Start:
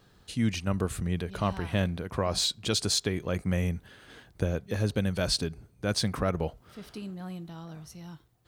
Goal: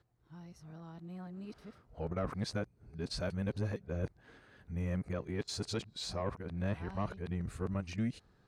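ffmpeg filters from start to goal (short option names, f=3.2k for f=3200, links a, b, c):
-af "areverse,equalizer=f=3.2k:w=3.1:g=-6.5,asoftclip=type=tanh:threshold=-17.5dB,aemphasis=mode=reproduction:type=50fm,volume=-7dB"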